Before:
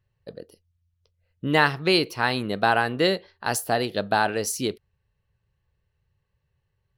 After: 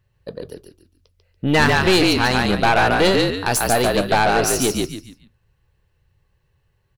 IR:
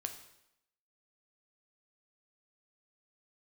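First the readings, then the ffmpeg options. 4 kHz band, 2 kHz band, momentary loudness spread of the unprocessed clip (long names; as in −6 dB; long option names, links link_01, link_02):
+6.5 dB, +6.0 dB, 8 LU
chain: -filter_complex "[0:a]asplit=5[link_01][link_02][link_03][link_04][link_05];[link_02]adelay=143,afreqshift=-49,volume=-3.5dB[link_06];[link_03]adelay=286,afreqshift=-98,volume=-13.4dB[link_07];[link_04]adelay=429,afreqshift=-147,volume=-23.3dB[link_08];[link_05]adelay=572,afreqshift=-196,volume=-33.2dB[link_09];[link_01][link_06][link_07][link_08][link_09]amix=inputs=5:normalize=0,aeval=exprs='(tanh(8.91*val(0)+0.4)-tanh(0.4))/8.91':channel_layout=same,volume=9dB"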